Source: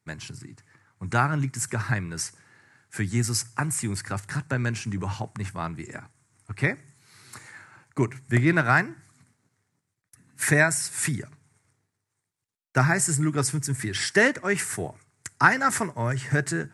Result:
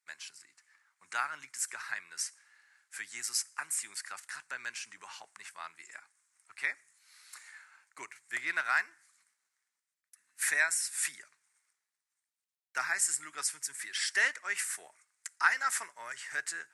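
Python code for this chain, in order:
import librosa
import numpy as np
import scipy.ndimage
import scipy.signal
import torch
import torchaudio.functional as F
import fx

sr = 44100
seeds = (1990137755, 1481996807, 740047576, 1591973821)

y = scipy.signal.sosfilt(scipy.signal.butter(2, 1500.0, 'highpass', fs=sr, output='sos'), x)
y = y * librosa.db_to_amplitude(-4.5)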